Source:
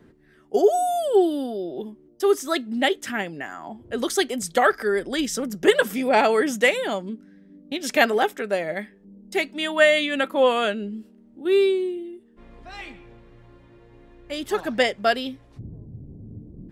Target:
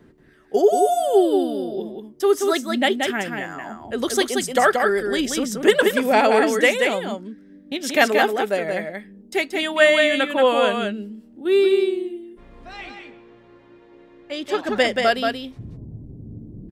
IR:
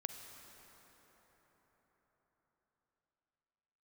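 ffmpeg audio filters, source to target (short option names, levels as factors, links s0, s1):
-filter_complex "[0:a]asettb=1/sr,asplit=3[s0][s1][s2];[s0]atrim=end=12.734[s3];[s1]atrim=start=12.73:end=14.69,asetpts=PTS-STARTPTS,afade=t=in:d=0.004:c=qsin,afade=t=out:st=1.956:d=0.004:c=qsin,acrossover=split=180 6800:gain=0.126 1 0.224[s4][s5][s6];[s4][s5][s6]amix=inputs=3:normalize=0[s7];[s2]atrim=start=14.686[s8];[s3][s7]acrossfade=d=0.004:c1=hsin:c2=qsin[s9];[s9][s8]acrossfade=d=0.004:c1=qsin:c2=hsin,aecho=1:1:180:0.596,volume=1.19"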